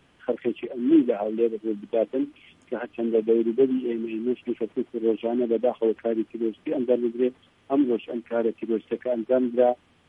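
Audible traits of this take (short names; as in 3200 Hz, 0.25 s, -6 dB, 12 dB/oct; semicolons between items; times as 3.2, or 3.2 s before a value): noise floor -61 dBFS; spectral tilt +0.5 dB/oct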